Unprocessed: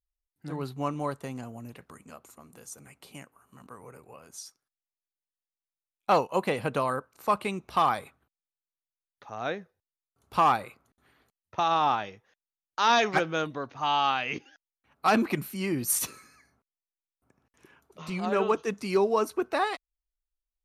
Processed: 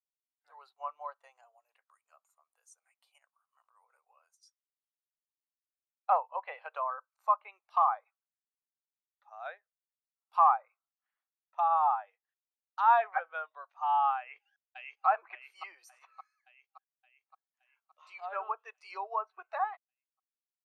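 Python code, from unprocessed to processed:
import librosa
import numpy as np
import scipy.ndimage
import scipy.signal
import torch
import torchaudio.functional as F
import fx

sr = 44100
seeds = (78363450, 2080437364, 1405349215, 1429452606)

y = fx.over_compress(x, sr, threshold_db=-48.0, ratio=-0.5, at=(3.18, 4.43))
y = fx.echo_throw(y, sr, start_s=14.18, length_s=0.88, ms=570, feedback_pct=65, wet_db=-4.5)
y = scipy.signal.sosfilt(scipy.signal.cheby2(4, 50, 260.0, 'highpass', fs=sr, output='sos'), y)
y = fx.env_lowpass_down(y, sr, base_hz=1700.0, full_db=-26.5)
y = fx.spectral_expand(y, sr, expansion=1.5)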